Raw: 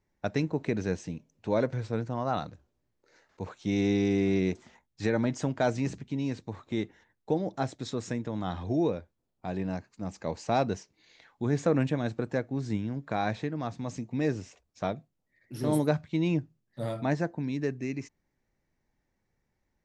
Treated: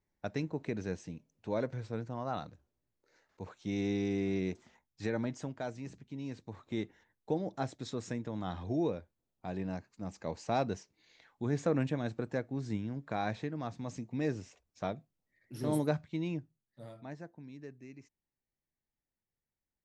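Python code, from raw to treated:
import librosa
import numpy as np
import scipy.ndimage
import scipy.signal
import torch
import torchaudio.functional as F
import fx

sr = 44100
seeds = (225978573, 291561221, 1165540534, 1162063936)

y = fx.gain(x, sr, db=fx.line((5.21, -7.0), (5.77, -14.0), (6.74, -5.0), (15.95, -5.0), (16.98, -17.0)))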